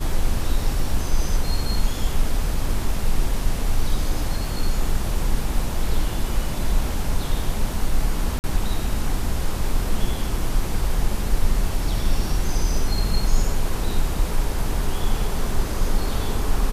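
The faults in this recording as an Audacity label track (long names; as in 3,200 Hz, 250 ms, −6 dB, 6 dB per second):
8.390000	8.440000	drop-out 49 ms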